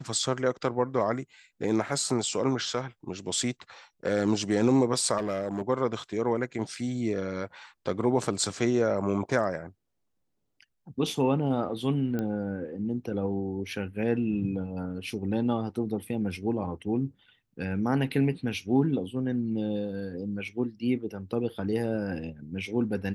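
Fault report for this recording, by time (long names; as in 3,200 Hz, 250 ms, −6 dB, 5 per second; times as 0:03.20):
0:05.17–0:05.62: clipping −25.5 dBFS
0:12.19: click −19 dBFS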